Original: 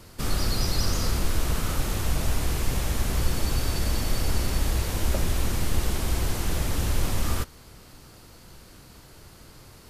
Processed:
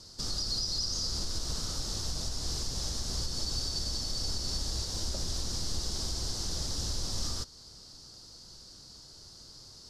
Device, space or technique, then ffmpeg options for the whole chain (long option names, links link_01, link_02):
over-bright horn tweeter: -af "highshelf=frequency=3500:width_type=q:width=3:gain=13,alimiter=limit=-11.5dB:level=0:latency=1:release=221,lowpass=5100,volume=-8.5dB"